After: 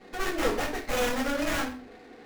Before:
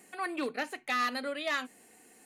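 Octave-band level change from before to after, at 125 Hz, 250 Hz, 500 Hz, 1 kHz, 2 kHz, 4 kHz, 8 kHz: can't be measured, +7.5 dB, +8.0 dB, +1.5 dB, +2.0 dB, +3.5 dB, +11.0 dB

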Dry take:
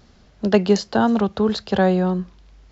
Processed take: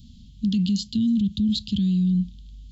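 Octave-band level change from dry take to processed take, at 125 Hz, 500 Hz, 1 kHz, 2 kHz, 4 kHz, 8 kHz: +0.5 dB, below −30 dB, below −40 dB, below −20 dB, 0.0 dB, can't be measured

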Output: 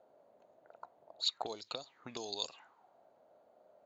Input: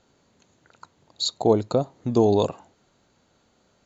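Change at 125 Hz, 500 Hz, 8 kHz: −33.5 dB, −25.0 dB, can't be measured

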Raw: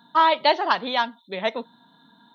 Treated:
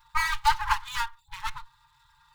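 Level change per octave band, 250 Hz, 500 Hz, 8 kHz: below −30 dB, below −40 dB, can't be measured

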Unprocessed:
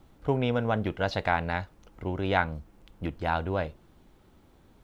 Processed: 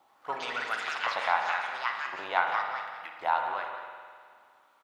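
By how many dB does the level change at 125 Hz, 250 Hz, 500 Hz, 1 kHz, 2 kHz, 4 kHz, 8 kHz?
below −30 dB, −22.0 dB, −8.5 dB, +3.0 dB, +2.5 dB, +1.5 dB, can't be measured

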